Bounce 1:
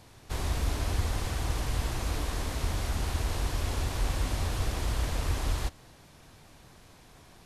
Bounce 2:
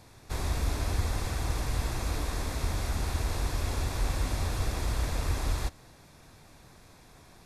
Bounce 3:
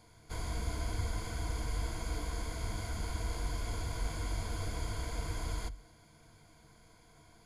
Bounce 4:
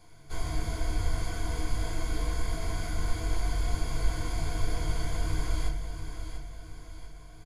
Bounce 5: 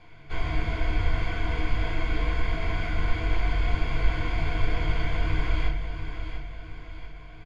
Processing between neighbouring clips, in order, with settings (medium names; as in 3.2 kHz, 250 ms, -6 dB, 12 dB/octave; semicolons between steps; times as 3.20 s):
band-stop 3 kHz, Q 7.8
rippled EQ curve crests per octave 1.8, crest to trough 12 dB; trim -8 dB
feedback delay 692 ms, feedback 46%, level -9 dB; reverberation RT60 0.30 s, pre-delay 3 ms, DRR -1 dB
resonant low-pass 2.6 kHz, resonance Q 2.5; trim +4 dB